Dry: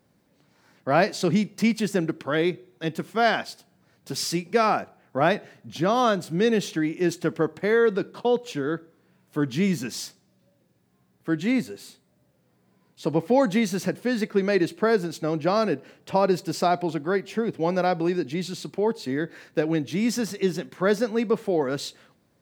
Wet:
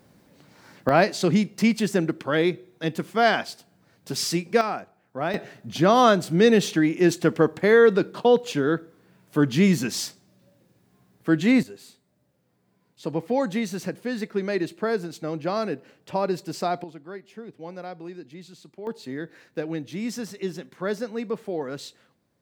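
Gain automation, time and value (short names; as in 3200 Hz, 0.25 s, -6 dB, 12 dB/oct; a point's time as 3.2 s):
+8.5 dB
from 0.89 s +1.5 dB
from 4.61 s -6.5 dB
from 5.34 s +4.5 dB
from 11.63 s -4 dB
from 16.84 s -14 dB
from 18.87 s -6 dB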